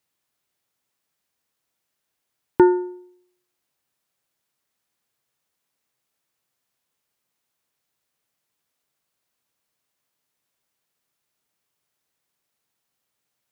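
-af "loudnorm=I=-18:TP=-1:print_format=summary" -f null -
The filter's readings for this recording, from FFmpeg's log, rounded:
Input Integrated:    -19.8 LUFS
Input True Peak:      -1.9 dBTP
Input LRA:             0.0 LU
Input Threshold:     -32.0 LUFS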